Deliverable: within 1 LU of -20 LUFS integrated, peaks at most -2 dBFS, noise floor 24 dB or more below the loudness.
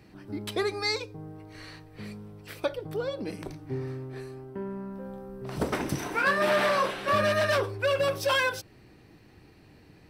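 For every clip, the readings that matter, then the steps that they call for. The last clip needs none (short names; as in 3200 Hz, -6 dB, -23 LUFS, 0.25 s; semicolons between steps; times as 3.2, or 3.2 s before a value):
loudness -28.5 LUFS; peak -14.5 dBFS; loudness target -20.0 LUFS
-> gain +8.5 dB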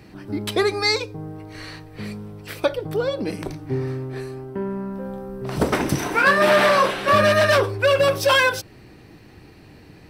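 loudness -20.0 LUFS; peak -6.0 dBFS; noise floor -47 dBFS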